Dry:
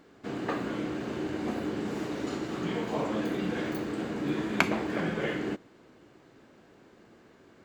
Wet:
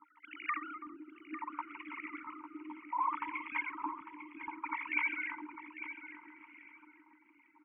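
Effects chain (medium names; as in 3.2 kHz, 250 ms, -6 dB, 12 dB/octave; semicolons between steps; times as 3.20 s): formants replaced by sine waves; vowel filter u; bass shelf 320 Hz -11.5 dB; compressor with a negative ratio -51 dBFS, ratio -0.5; Chebyshev band-stop 310–920 Hz, order 5; two-band feedback delay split 460 Hz, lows 724 ms, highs 328 ms, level -9 dB; LFO low-pass sine 0.65 Hz 550–2200 Hz; feedback delay 850 ms, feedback 19%, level -11.5 dB; trim +14.5 dB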